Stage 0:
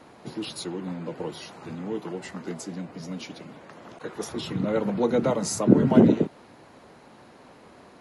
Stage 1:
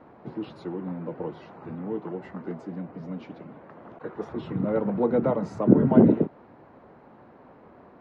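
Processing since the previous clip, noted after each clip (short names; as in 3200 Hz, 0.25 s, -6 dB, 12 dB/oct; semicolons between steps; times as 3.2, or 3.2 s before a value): LPF 1400 Hz 12 dB/oct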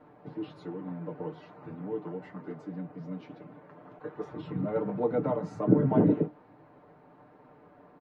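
comb 6.7 ms; flange 1.2 Hz, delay 8.1 ms, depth 4 ms, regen -60%; gain -2 dB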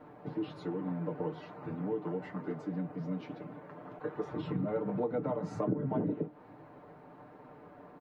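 compressor 6:1, threshold -33 dBFS, peak gain reduction 17 dB; gain +3 dB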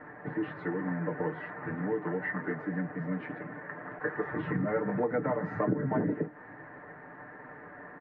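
synth low-pass 1800 Hz, resonance Q 9.8; gain +2.5 dB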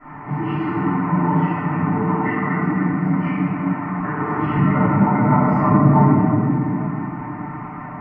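fixed phaser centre 2500 Hz, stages 8; reverb RT60 2.7 s, pre-delay 3 ms, DRR -18.5 dB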